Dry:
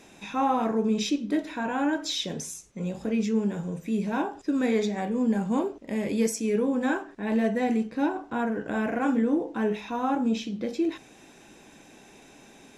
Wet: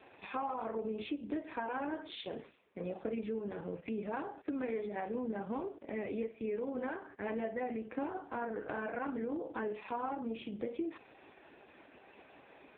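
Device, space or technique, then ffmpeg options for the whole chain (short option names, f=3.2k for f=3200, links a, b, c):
voicemail: -af "highpass=380,lowpass=2.7k,acompressor=threshold=-35dB:ratio=8,volume=1.5dB" -ar 8000 -c:a libopencore_amrnb -b:a 4750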